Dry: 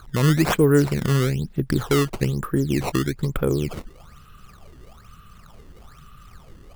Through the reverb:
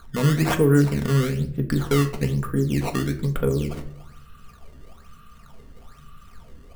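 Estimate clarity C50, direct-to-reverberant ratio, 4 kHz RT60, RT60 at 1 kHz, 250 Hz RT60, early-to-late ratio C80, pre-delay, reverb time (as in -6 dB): 13.5 dB, 3.0 dB, 0.40 s, 0.50 s, 0.80 s, 16.5 dB, 4 ms, 0.65 s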